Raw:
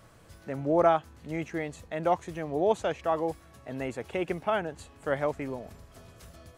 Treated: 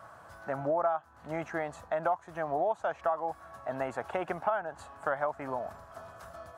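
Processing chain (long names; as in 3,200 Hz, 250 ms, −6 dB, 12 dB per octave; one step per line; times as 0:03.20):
high-pass filter 59 Hz
flat-topped bell 1,000 Hz +15.5 dB
downward compressor 6 to 1, threshold −23 dBFS, peak gain reduction 18.5 dB
level −4.5 dB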